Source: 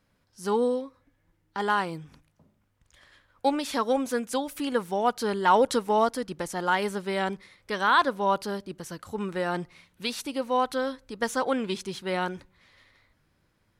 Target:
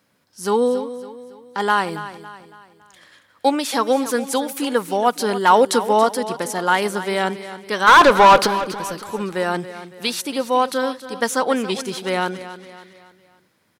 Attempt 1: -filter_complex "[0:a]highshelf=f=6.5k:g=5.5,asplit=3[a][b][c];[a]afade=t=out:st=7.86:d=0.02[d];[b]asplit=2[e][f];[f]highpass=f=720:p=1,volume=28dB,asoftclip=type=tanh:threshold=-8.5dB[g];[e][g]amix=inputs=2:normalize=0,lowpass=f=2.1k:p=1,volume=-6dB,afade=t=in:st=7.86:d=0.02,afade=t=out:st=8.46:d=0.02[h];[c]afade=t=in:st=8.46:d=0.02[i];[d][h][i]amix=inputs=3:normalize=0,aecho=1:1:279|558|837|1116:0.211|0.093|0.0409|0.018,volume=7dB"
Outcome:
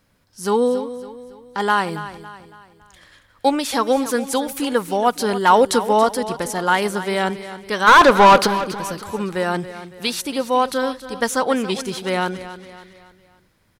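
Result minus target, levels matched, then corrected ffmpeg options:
125 Hz band +2.5 dB
-filter_complex "[0:a]highpass=170,highshelf=f=6.5k:g=5.5,asplit=3[a][b][c];[a]afade=t=out:st=7.86:d=0.02[d];[b]asplit=2[e][f];[f]highpass=f=720:p=1,volume=28dB,asoftclip=type=tanh:threshold=-8.5dB[g];[e][g]amix=inputs=2:normalize=0,lowpass=f=2.1k:p=1,volume=-6dB,afade=t=in:st=7.86:d=0.02,afade=t=out:st=8.46:d=0.02[h];[c]afade=t=in:st=8.46:d=0.02[i];[d][h][i]amix=inputs=3:normalize=0,aecho=1:1:279|558|837|1116:0.211|0.093|0.0409|0.018,volume=7dB"

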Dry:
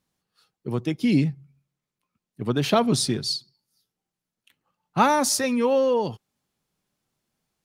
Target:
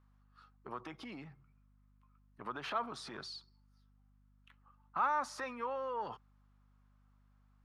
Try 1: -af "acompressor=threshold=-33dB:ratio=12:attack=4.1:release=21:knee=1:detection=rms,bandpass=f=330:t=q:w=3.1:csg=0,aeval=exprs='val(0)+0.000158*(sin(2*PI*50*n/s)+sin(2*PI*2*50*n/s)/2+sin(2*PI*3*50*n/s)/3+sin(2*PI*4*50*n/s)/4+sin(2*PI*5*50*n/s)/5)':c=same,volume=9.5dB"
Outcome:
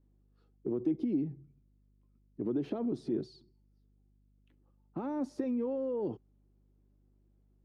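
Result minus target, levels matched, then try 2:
1000 Hz band -17.0 dB
-af "acompressor=threshold=-33dB:ratio=12:attack=4.1:release=21:knee=1:detection=rms,bandpass=f=1.2k:t=q:w=3.1:csg=0,aeval=exprs='val(0)+0.000158*(sin(2*PI*50*n/s)+sin(2*PI*2*50*n/s)/2+sin(2*PI*3*50*n/s)/3+sin(2*PI*4*50*n/s)/4+sin(2*PI*5*50*n/s)/5)':c=same,volume=9.5dB"

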